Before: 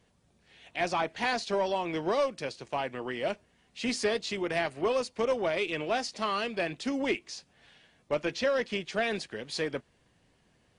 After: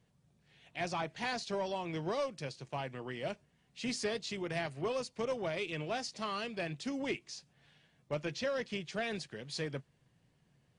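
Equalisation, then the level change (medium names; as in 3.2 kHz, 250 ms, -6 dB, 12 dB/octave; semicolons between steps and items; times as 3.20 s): dynamic bell 6.4 kHz, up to +4 dB, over -51 dBFS, Q 0.7; peaking EQ 140 Hz +12.5 dB 0.7 oct; -8.0 dB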